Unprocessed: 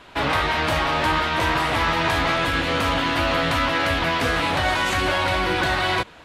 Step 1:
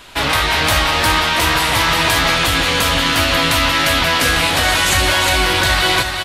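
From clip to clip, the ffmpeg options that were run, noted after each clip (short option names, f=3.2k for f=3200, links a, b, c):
-af "lowshelf=f=64:g=10,crystalizer=i=4.5:c=0,aecho=1:1:355:0.531,volume=1.5dB"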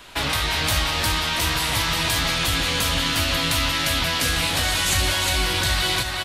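-filter_complex "[0:a]acrossover=split=230|3000[a][b][c];[b]acompressor=threshold=-22dB:ratio=4[d];[a][d][c]amix=inputs=3:normalize=0,volume=-4dB"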